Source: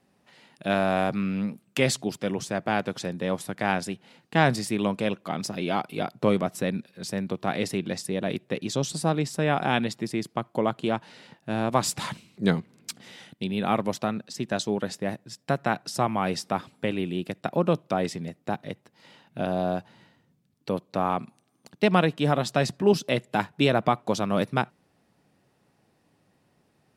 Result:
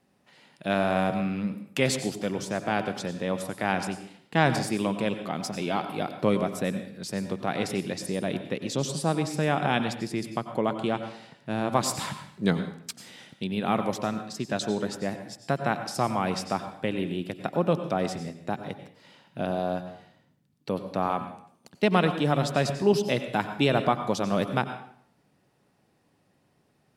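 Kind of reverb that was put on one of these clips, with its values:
dense smooth reverb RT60 0.59 s, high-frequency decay 0.85×, pre-delay 80 ms, DRR 9 dB
level −1.5 dB

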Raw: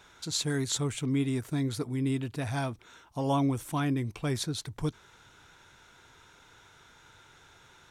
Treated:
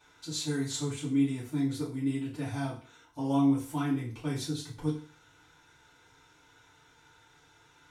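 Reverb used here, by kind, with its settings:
feedback delay network reverb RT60 0.42 s, low-frequency decay 0.95×, high-frequency decay 0.95×, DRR −8 dB
level −12.5 dB

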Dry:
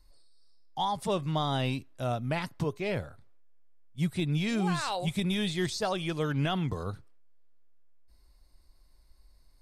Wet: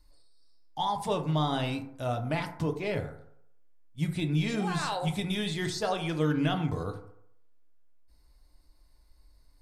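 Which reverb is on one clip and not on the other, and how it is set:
feedback delay network reverb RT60 0.71 s, low-frequency decay 0.85×, high-frequency decay 0.35×, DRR 4.5 dB
level −1 dB

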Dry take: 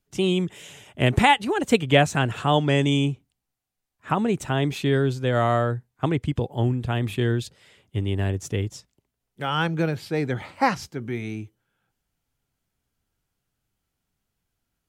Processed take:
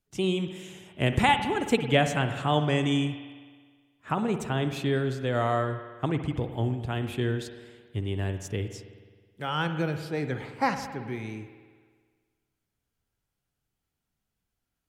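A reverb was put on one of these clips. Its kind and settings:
spring reverb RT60 1.6 s, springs 53 ms, chirp 50 ms, DRR 8 dB
level −5 dB

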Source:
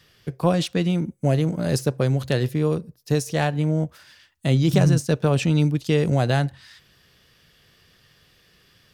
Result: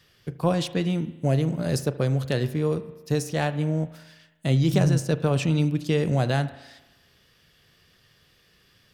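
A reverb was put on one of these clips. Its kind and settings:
spring reverb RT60 1.1 s, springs 37 ms, chirp 80 ms, DRR 13 dB
level −3 dB

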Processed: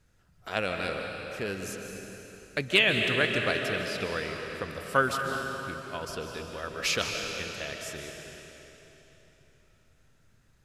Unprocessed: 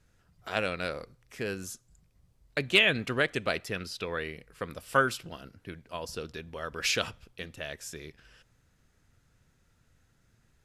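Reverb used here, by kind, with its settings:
comb and all-pass reverb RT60 3.6 s, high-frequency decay 0.95×, pre-delay 105 ms, DRR 2.5 dB

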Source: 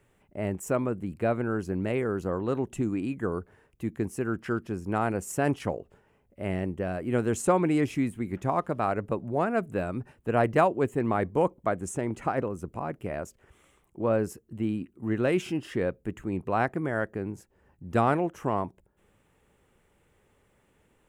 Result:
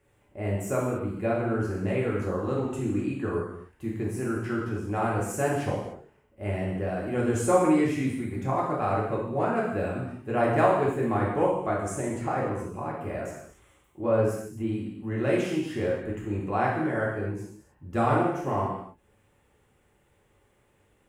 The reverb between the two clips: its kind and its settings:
reverb whose tail is shaped and stops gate 320 ms falling, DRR −5.5 dB
level −5.5 dB

